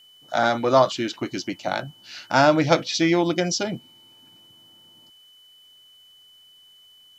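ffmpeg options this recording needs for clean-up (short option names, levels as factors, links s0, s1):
-af "bandreject=f=3000:w=30,agate=range=0.0891:threshold=0.00562"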